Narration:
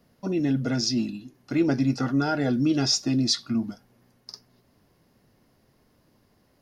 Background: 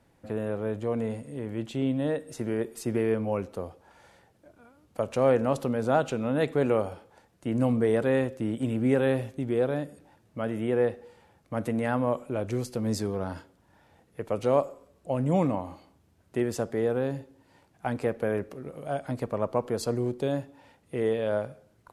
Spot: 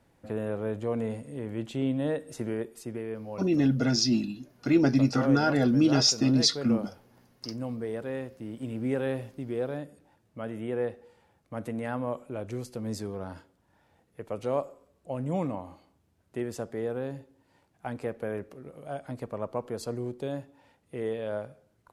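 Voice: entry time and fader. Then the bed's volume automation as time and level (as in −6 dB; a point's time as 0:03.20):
3.15 s, +0.5 dB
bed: 0:02.42 −1 dB
0:03.04 −10 dB
0:08.40 −10 dB
0:08.80 −5.5 dB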